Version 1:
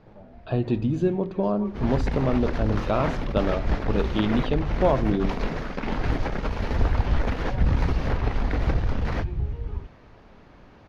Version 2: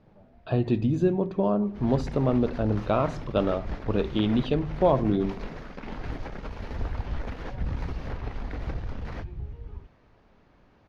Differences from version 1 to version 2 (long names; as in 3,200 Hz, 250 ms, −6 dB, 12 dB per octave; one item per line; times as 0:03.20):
first sound −9.0 dB
second sound −9.5 dB